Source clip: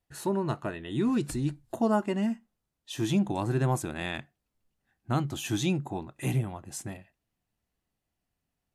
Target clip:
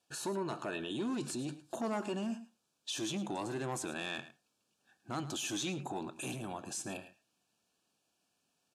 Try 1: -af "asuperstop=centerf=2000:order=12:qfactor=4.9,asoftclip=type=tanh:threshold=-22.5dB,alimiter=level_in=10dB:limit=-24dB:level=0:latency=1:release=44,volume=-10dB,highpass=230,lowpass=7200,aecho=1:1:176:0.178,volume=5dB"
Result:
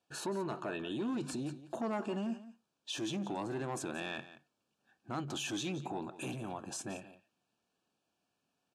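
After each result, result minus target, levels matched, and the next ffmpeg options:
echo 68 ms late; 8,000 Hz band −3.5 dB
-af "asuperstop=centerf=2000:order=12:qfactor=4.9,asoftclip=type=tanh:threshold=-22.5dB,alimiter=level_in=10dB:limit=-24dB:level=0:latency=1:release=44,volume=-10dB,highpass=230,lowpass=7200,aecho=1:1:108:0.178,volume=5dB"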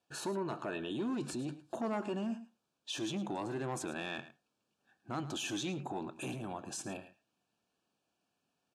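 8,000 Hz band −3.5 dB
-af "asuperstop=centerf=2000:order=12:qfactor=4.9,highshelf=frequency=4000:gain=11.5,asoftclip=type=tanh:threshold=-22.5dB,alimiter=level_in=10dB:limit=-24dB:level=0:latency=1:release=44,volume=-10dB,highpass=230,lowpass=7200,aecho=1:1:108:0.178,volume=5dB"

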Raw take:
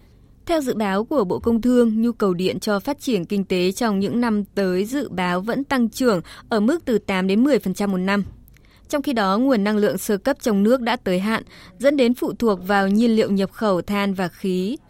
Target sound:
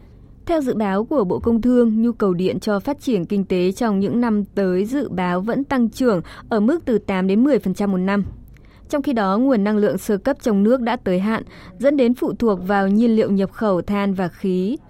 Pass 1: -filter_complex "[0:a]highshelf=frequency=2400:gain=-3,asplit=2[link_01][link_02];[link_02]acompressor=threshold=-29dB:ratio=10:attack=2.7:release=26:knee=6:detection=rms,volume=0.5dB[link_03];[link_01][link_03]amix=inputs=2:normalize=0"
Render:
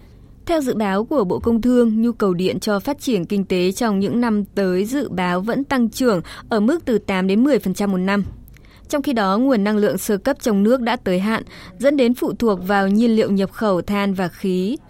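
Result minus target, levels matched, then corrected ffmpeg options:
4,000 Hz band +5.5 dB
-filter_complex "[0:a]highshelf=frequency=2400:gain=-12,asplit=2[link_01][link_02];[link_02]acompressor=threshold=-29dB:ratio=10:attack=2.7:release=26:knee=6:detection=rms,volume=0.5dB[link_03];[link_01][link_03]amix=inputs=2:normalize=0"

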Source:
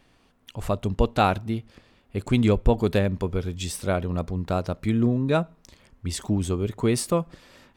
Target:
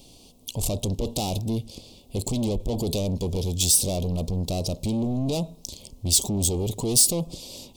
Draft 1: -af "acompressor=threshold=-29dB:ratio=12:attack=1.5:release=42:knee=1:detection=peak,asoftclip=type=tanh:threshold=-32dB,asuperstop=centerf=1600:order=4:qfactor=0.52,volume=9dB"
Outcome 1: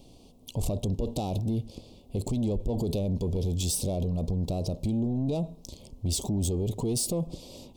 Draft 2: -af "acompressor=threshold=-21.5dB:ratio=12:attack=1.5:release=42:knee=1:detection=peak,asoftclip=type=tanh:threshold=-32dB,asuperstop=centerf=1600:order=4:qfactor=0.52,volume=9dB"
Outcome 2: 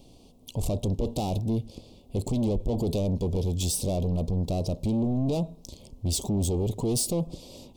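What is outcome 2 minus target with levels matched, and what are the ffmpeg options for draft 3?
4,000 Hz band −5.5 dB
-af "acompressor=threshold=-21.5dB:ratio=12:attack=1.5:release=42:knee=1:detection=peak,asoftclip=type=tanh:threshold=-32dB,asuperstop=centerf=1600:order=4:qfactor=0.52,highshelf=frequency=2100:gain=11.5,volume=9dB"

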